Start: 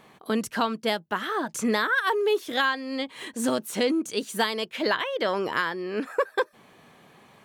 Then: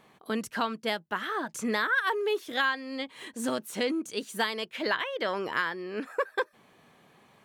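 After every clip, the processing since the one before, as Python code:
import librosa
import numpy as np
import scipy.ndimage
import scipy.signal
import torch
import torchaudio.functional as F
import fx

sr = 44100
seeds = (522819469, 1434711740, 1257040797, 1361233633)

y = fx.dynamic_eq(x, sr, hz=1900.0, q=0.92, threshold_db=-37.0, ratio=4.0, max_db=4)
y = F.gain(torch.from_numpy(y), -5.5).numpy()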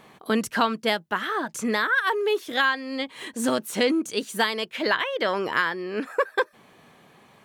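y = fx.rider(x, sr, range_db=10, speed_s=2.0)
y = F.gain(torch.from_numpy(y), 5.0).numpy()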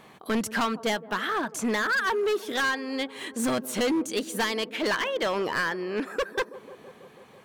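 y = fx.echo_wet_lowpass(x, sr, ms=164, feedback_pct=75, hz=710.0, wet_db=-19.0)
y = np.clip(10.0 ** (22.0 / 20.0) * y, -1.0, 1.0) / 10.0 ** (22.0 / 20.0)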